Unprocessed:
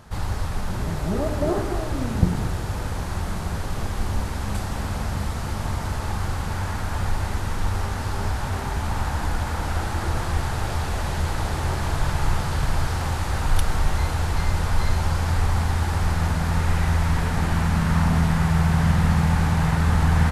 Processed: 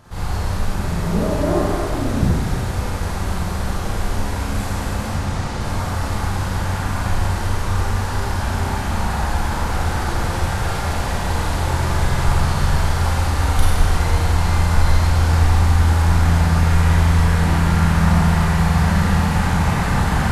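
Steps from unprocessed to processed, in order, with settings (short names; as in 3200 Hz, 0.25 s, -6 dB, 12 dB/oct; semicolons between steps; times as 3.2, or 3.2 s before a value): 5.09–5.61 LPF 8100 Hz 12 dB/oct; Schroeder reverb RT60 1.3 s, combs from 32 ms, DRR -6.5 dB; gain -2 dB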